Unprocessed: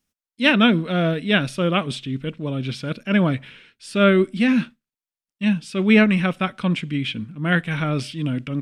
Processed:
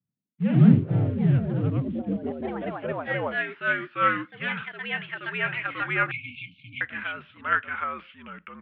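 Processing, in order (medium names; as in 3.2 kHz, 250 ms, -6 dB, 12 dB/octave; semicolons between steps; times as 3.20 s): band-pass sweep 200 Hz -> 1.4 kHz, 1.68–3.85 s; in parallel at -8 dB: short-mantissa float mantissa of 2-bit; on the sum: ever faster or slower copies 85 ms, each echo +2 st, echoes 3; 6.11–6.81 s: brick-wall FIR band-stop 350–2200 Hz; mistuned SSB -67 Hz 180–3200 Hz; trim -1.5 dB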